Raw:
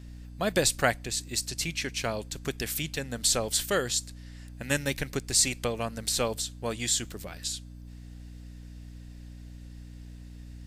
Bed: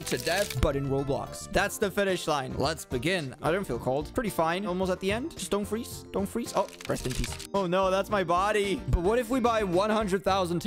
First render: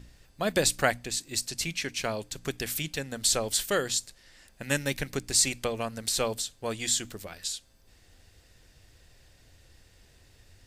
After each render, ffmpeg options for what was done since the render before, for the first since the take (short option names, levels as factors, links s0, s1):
-af "bandreject=f=60:t=h:w=6,bandreject=f=120:t=h:w=6,bandreject=f=180:t=h:w=6,bandreject=f=240:t=h:w=6,bandreject=f=300:t=h:w=6"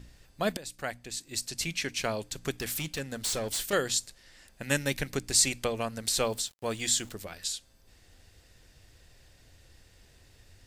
-filter_complex "[0:a]asettb=1/sr,asplit=3[s0][s1][s2];[s0]atrim=end=2.534[s3];[s1]atrim=start=2.53:end=3.73,asetpts=PTS-STARTPTS,afade=t=in:d=0.004:c=qsin,afade=t=out:st=1.196:d=0.004:c=qsin,asoftclip=type=hard:threshold=0.0376[s4];[s2]atrim=start=3.726[s5];[s3][s4]acrossfade=d=0.004:c1=hsin:c2=qsin[s6];[s6][s5]acrossfade=d=0.004:c1=qsin:c2=hsin,asettb=1/sr,asplit=3[s7][s8][s9];[s7]atrim=end=6.074[s10];[s8]atrim=start=6.07:end=7.13,asetpts=PTS-STARTPTS,afade=t=in:d=0.004:c=qsin,afade=t=out:st=1.056:d=0.004:c=qsin,aeval=exprs='val(0)*gte(abs(val(0)),0.00316)':c=same[s11];[s9]atrim=start=7.126[s12];[s10][s11]acrossfade=d=0.004:c1=hsin:c2=qsin[s13];[s13][s12]acrossfade=d=0.004:c1=qsin:c2=hsin,asplit=2[s14][s15];[s14]atrim=end=0.57,asetpts=PTS-STARTPTS,afade=t=out:st=0.566:d=0.004:c=hsin:silence=0.0707946[s16];[s15]atrim=start=0.57,asetpts=PTS-STARTPTS,afade=t=in:d=1.21:silence=0.0707946[s17];[s16][s17]concat=n=2:v=0:a=1"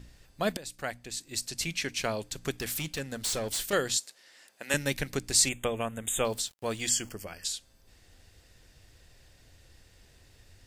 -filter_complex "[0:a]asettb=1/sr,asplit=3[s0][s1][s2];[s0]atrim=end=3.974[s3];[s1]atrim=start=3.97:end=4.74,asetpts=PTS-STARTPTS,afade=t=in:d=0.004:c=qsin,afade=t=out:st=0.766:d=0.004:c=qsin,highpass=390[s4];[s2]atrim=start=4.736[s5];[s3][s4]acrossfade=d=0.004:c1=hsin:c2=qsin[s6];[s6][s5]acrossfade=d=0.004:c1=qsin:c2=hsin,asettb=1/sr,asplit=3[s7][s8][s9];[s7]atrim=end=5.494[s10];[s8]atrim=start=5.49:end=6.25,asetpts=PTS-STARTPTS,afade=t=in:d=0.004:c=qsin,afade=t=out:st=0.756:d=0.004:c=qsin,asuperstop=centerf=4900:order=20:qfactor=1.8[s11];[s9]atrim=start=6.246[s12];[s10][s11]acrossfade=d=0.004:c1=hsin:c2=qsin[s13];[s13][s12]acrossfade=d=0.004:c1=qsin:c2=hsin,asettb=1/sr,asplit=3[s14][s15][s16];[s14]atrim=end=6.894[s17];[s15]atrim=start=6.89:end=7.45,asetpts=PTS-STARTPTS,afade=t=in:d=0.004:c=qsin,afade=t=out:st=0.556:d=0.004:c=qsin,asuperstop=centerf=3800:order=20:qfactor=3.7[s18];[s16]atrim=start=7.446[s19];[s17][s18]acrossfade=d=0.004:c1=hsin:c2=qsin[s20];[s20][s19]acrossfade=d=0.004:c1=qsin:c2=hsin"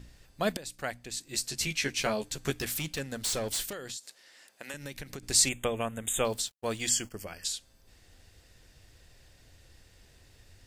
-filter_complex "[0:a]asettb=1/sr,asplit=3[s0][s1][s2];[s0]atrim=end=1.284[s3];[s1]atrim=start=1.28:end=2.65,asetpts=PTS-STARTPTS,afade=t=in:d=0.004:c=qsin,afade=t=out:st=1.366:d=0.004:c=qsin,asplit=2[s4][s5];[s5]adelay=14,volume=0.668[s6];[s4][s6]amix=inputs=2:normalize=0,atrim=end_sample=60417[s7];[s2]atrim=start=2.646[s8];[s3][s7]acrossfade=d=0.004:c1=hsin:c2=qsin[s9];[s9][s8]acrossfade=d=0.004:c1=qsin:c2=hsin,asettb=1/sr,asplit=3[s10][s11][s12];[s10]atrim=end=3.704[s13];[s11]atrim=start=3.7:end=5.23,asetpts=PTS-STARTPTS,afade=t=in:d=0.004:c=qsin,afade=t=out:st=1.526:d=0.004:c=qsin,acompressor=threshold=0.0141:ratio=6:attack=3.2:release=140:knee=1:detection=peak[s14];[s12]atrim=start=5.226[s15];[s13][s14]acrossfade=d=0.004:c1=hsin:c2=qsin[s16];[s16][s15]acrossfade=d=0.004:c1=qsin:c2=hsin,asettb=1/sr,asplit=3[s17][s18][s19];[s17]atrim=end=6.134[s20];[s18]atrim=start=6.13:end=7.14,asetpts=PTS-STARTPTS,afade=t=in:d=0.004:c=qsin,afade=t=out:st=1.006:d=0.004:c=qsin,agate=range=0.0224:threshold=0.01:ratio=3:release=100:detection=peak[s21];[s19]atrim=start=7.136[s22];[s20][s21]acrossfade=d=0.004:c1=hsin:c2=qsin[s23];[s23][s22]acrossfade=d=0.004:c1=qsin:c2=hsin"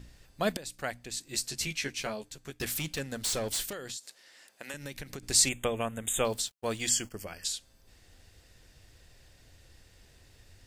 -filter_complex "[0:a]asplit=2[s0][s1];[s0]atrim=end=2.6,asetpts=PTS-STARTPTS,afade=t=out:st=1.33:d=1.27:silence=0.177828[s2];[s1]atrim=start=2.6,asetpts=PTS-STARTPTS,afade=t=in:d=0.004:c=hsin:silence=0.177828[s3];[s2][s3]concat=n=2:v=0:a=1"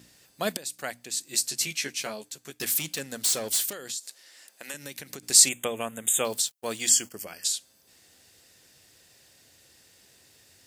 -af "highpass=170,highshelf=f=4900:g=10.5"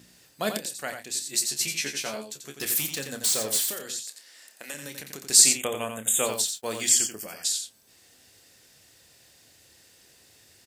-filter_complex "[0:a]asplit=2[s0][s1];[s1]adelay=28,volume=0.316[s2];[s0][s2]amix=inputs=2:normalize=0,aecho=1:1:88:0.447"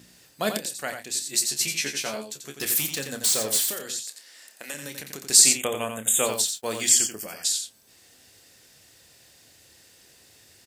-af "volume=1.26,alimiter=limit=0.708:level=0:latency=1"